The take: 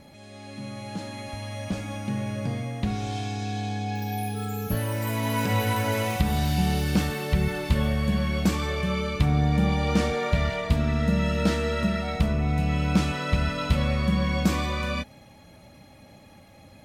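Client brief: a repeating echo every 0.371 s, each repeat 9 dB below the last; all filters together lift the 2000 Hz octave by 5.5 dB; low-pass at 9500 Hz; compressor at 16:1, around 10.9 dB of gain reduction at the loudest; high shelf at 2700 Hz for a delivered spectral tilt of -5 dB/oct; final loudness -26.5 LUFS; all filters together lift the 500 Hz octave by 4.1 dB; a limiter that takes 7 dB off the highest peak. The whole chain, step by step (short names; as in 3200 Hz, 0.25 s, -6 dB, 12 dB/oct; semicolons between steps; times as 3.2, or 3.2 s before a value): LPF 9500 Hz; bell 500 Hz +4.5 dB; bell 2000 Hz +8 dB; high shelf 2700 Hz -3.5 dB; compressor 16:1, threshold -27 dBFS; limiter -23.5 dBFS; feedback echo 0.371 s, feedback 35%, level -9 dB; gain +6 dB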